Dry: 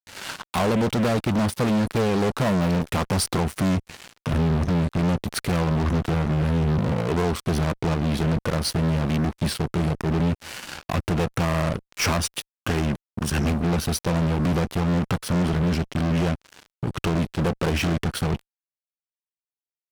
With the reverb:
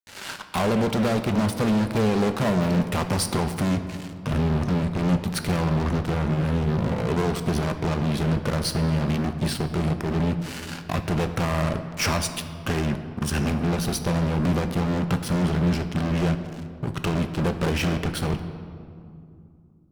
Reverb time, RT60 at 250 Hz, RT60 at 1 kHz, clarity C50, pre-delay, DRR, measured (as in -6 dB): 2.5 s, 3.7 s, 2.3 s, 10.0 dB, 5 ms, 7.5 dB